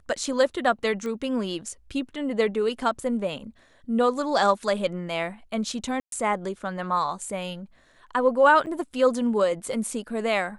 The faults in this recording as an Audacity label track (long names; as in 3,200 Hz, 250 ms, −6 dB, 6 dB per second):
1.060000	1.060000	click −22 dBFS
6.000000	6.120000	drop-out 122 ms
8.660000	8.670000	drop-out 8.3 ms